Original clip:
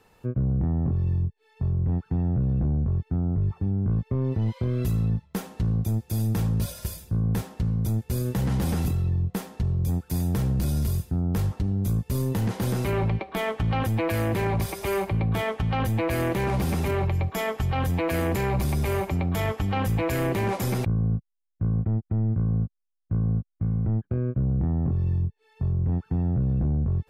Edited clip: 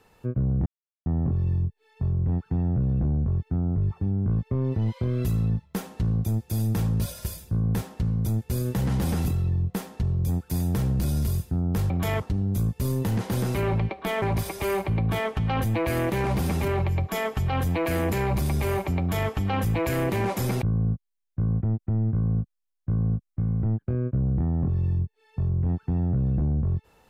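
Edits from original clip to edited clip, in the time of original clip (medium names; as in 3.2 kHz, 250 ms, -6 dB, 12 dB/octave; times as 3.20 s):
0.66 s: insert silence 0.40 s
13.52–14.45 s: delete
19.22–19.52 s: copy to 11.50 s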